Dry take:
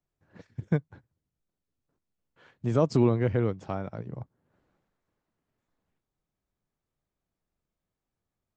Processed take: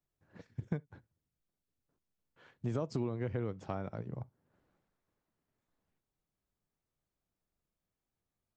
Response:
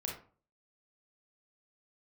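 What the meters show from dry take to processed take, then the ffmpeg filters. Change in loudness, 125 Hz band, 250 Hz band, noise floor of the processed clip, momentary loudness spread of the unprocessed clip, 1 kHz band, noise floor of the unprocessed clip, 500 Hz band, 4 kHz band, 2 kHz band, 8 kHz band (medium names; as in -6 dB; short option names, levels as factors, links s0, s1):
-11.5 dB, -10.0 dB, -11.0 dB, under -85 dBFS, 19 LU, -9.5 dB, under -85 dBFS, -11.5 dB, -9.5 dB, -9.5 dB, no reading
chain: -filter_complex "[0:a]acompressor=threshold=0.0398:ratio=6,asplit=2[s0][s1];[1:a]atrim=start_sample=2205,atrim=end_sample=3528[s2];[s1][s2]afir=irnorm=-1:irlink=0,volume=0.0794[s3];[s0][s3]amix=inputs=2:normalize=0,volume=0.631"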